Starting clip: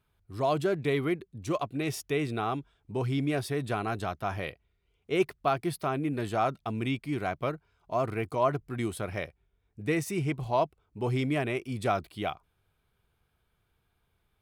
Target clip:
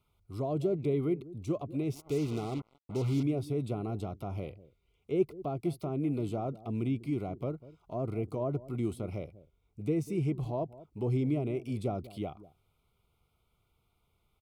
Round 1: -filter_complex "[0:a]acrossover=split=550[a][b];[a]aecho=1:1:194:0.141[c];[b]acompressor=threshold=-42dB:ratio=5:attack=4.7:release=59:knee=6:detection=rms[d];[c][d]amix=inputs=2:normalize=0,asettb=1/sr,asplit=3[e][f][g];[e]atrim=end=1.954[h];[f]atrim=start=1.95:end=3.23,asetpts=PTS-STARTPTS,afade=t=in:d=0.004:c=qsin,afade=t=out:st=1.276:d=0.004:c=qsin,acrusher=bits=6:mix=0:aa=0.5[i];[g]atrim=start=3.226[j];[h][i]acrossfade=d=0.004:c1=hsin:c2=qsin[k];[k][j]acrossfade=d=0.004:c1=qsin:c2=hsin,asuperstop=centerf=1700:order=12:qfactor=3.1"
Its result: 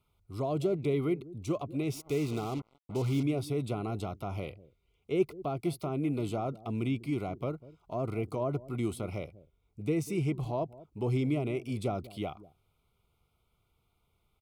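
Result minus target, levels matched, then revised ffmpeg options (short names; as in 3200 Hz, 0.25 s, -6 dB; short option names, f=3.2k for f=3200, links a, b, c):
compressor: peak gain reduction -7.5 dB
-filter_complex "[0:a]acrossover=split=550[a][b];[a]aecho=1:1:194:0.141[c];[b]acompressor=threshold=-51.5dB:ratio=5:attack=4.7:release=59:knee=6:detection=rms[d];[c][d]amix=inputs=2:normalize=0,asettb=1/sr,asplit=3[e][f][g];[e]atrim=end=1.954[h];[f]atrim=start=1.95:end=3.23,asetpts=PTS-STARTPTS,afade=t=in:d=0.004:c=qsin,afade=t=out:st=1.276:d=0.004:c=qsin,acrusher=bits=6:mix=0:aa=0.5[i];[g]atrim=start=3.226[j];[h][i]acrossfade=d=0.004:c1=hsin:c2=qsin[k];[k][j]acrossfade=d=0.004:c1=qsin:c2=hsin,asuperstop=centerf=1700:order=12:qfactor=3.1"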